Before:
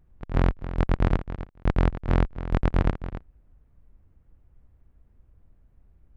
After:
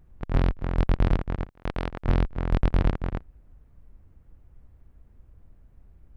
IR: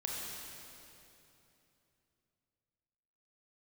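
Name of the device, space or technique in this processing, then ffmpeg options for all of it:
limiter into clipper: -filter_complex "[0:a]alimiter=limit=0.178:level=0:latency=1:release=47,asoftclip=type=hard:threshold=0.141,asettb=1/sr,asplit=3[s0][s1][s2];[s0]atrim=end=1.524[s3];[s1]atrim=start=1.52:end=2.05,asetpts=PTS-STARTPTS,afade=t=in:d=0.004:c=qsin,afade=t=out:st=0.526:d=0.004:c=qsin,lowshelf=f=250:g=-11[s4];[s2]atrim=start=2.046[s5];[s3][s4]acrossfade=d=0.004:c1=hsin:c2=qsin[s6];[s6][s5]acrossfade=d=0.004:c1=qsin:c2=hsin,volume=1.68"

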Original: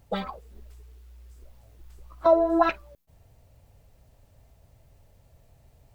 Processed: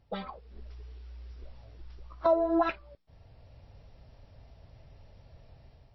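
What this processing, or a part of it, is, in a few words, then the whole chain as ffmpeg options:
low-bitrate web radio: -af "dynaudnorm=f=220:g=5:m=3.55,alimiter=limit=0.398:level=0:latency=1:release=379,volume=0.447" -ar 16000 -c:a libmp3lame -b:a 24k

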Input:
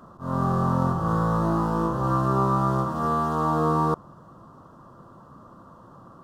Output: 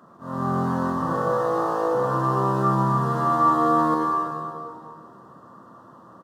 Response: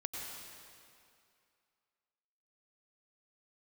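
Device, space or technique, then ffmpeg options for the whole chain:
stadium PA: -filter_complex "[0:a]asettb=1/sr,asplit=3[s0][s1][s2];[s0]atrim=end=1.134[s3];[s1]atrim=start=1.13:end=1.95,asetpts=PTS-STARTPTS,afade=t=in:d=0.004:c=qsin,afade=t=out:st=0.816:d=0.004:c=qsin,lowshelf=f=310:t=q:w=3:g=-13.5[s4];[s2]atrim=start=1.946[s5];[s3][s4]acrossfade=d=0.004:c1=hsin:c2=qsin[s6];[s6][s5]acrossfade=d=0.004:c1=qsin:c2=hsin,highpass=160,equalizer=f=1800:t=o:w=0.24:g=7,aecho=1:1:151.6|195.3:0.316|0.282[s7];[1:a]atrim=start_sample=2205[s8];[s7][s8]afir=irnorm=-1:irlink=0"

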